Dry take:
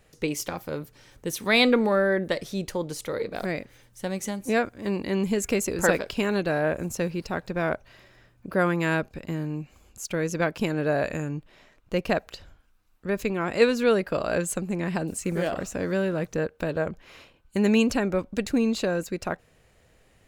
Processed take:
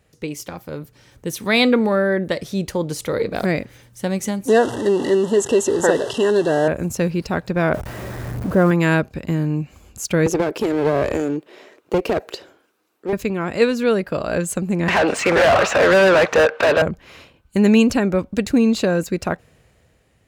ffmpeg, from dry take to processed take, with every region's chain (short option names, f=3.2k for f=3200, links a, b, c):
-filter_complex "[0:a]asettb=1/sr,asplit=3[a][b][c];[a]atrim=end=4.484[d];[b]atrim=start=4.48:end=6.68,asetpts=PTS-STARTPTS,afade=t=in:d=0.004:c=qsin,afade=t=out:st=2.196:d=0.004:c=qsin,aeval=exprs='val(0)+0.5*0.0447*sgn(val(0))':c=same,asuperstop=centerf=2300:order=20:qfactor=3.5,highpass=150,equalizer=f=190:t=q:w=4:g=-10,equalizer=f=400:t=q:w=4:g=7,equalizer=f=920:t=q:w=4:g=5,equalizer=f=1.4k:t=q:w=4:g=-6,equalizer=f=4.7k:t=q:w=4:g=-5,lowpass=f=9.5k:w=0.5412,lowpass=f=9.5k:w=1.3066[e];[c]atrim=start=6.676[f];[d][e]acrossfade=d=0.004:c1=hsin:c2=qsin[g];[g][f]acrossfade=d=0.004:c1=qsin:c2=hsin,asettb=1/sr,asplit=3[h][i][j];[h]atrim=end=7.744[k];[i]atrim=start=7.74:end=8.71,asetpts=PTS-STARTPTS,afade=t=in:d=0.004:c=qsin,afade=t=out:st=0.966:d=0.004:c=qsin,aeval=exprs='val(0)+0.5*0.0355*sgn(val(0))':c=same,acrossover=split=2600[l][m];[m]acompressor=threshold=-44dB:ratio=4:attack=1:release=60[n];[l][n]amix=inputs=2:normalize=0,equalizer=f=2.8k:t=o:w=2.4:g=-9[o];[j]atrim=start=8.706[p];[k][o]acrossfade=d=0.004:c1=hsin:c2=qsin[q];[q][p]acrossfade=d=0.004:c1=qsin:c2=hsin,asettb=1/sr,asplit=3[r][s][t];[r]atrim=end=10.264[u];[s]atrim=start=10.26:end=13.13,asetpts=PTS-STARTPTS,afade=t=in:d=0.004:c=qsin,afade=t=out:st=2.866:d=0.004:c=qsin,acompressor=threshold=-25dB:ratio=6:attack=3.2:release=140:knee=1:detection=peak,highpass=f=380:t=q:w=3.1,aeval=exprs='clip(val(0),-1,0.0299)':c=same[v];[t]atrim=start=13.126[w];[u][v]acrossfade=d=0.004:c1=hsin:c2=qsin[x];[x][w]acrossfade=d=0.004:c1=qsin:c2=hsin,asettb=1/sr,asplit=3[y][z][aa];[y]atrim=end=14.884[ab];[z]atrim=start=14.88:end=16.82,asetpts=PTS-STARTPTS,afade=t=in:d=0.004:c=qsin,afade=t=out:st=1.936:d=0.004:c=qsin,lowpass=7.8k,acrossover=split=490 4000:gain=0.112 1 0.2[ac][ad][ae];[ac][ad][ae]amix=inputs=3:normalize=0,asplit=2[af][ag];[ag]highpass=f=720:p=1,volume=33dB,asoftclip=type=tanh:threshold=-14.5dB[ah];[af][ah]amix=inputs=2:normalize=0,lowpass=f=2.3k:p=1,volume=-6dB[ai];[aa]atrim=start=16.816[aj];[ab][ai]acrossfade=d=0.004:c1=hsin:c2=qsin[ak];[ak][aj]acrossfade=d=0.004:c1=qsin:c2=hsin,highpass=58,lowshelf=f=220:g=6,dynaudnorm=f=160:g=11:m=11.5dB,volume=-2dB"